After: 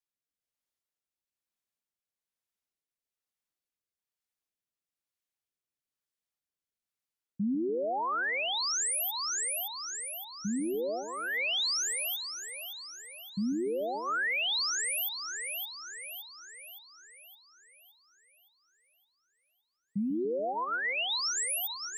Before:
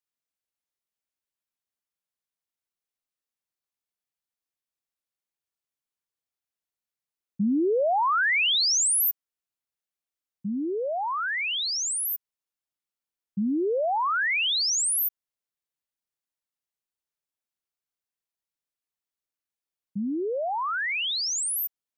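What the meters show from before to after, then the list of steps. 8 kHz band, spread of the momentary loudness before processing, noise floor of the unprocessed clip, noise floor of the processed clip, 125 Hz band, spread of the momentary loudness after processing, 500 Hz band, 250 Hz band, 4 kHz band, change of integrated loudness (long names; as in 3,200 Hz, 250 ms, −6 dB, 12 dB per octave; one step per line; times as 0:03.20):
−5.5 dB, 11 LU, below −85 dBFS, below −85 dBFS, −3.5 dB, 13 LU, −5.5 dB, −4.5 dB, −4.5 dB, −7.0 dB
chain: rotating-speaker cabinet horn 1.1 Hz, later 7.5 Hz, at 0:19.16
echo with a time of its own for lows and highs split 570 Hz, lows 143 ms, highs 566 ms, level −9.5 dB
brickwall limiter −26 dBFS, peak gain reduction 9 dB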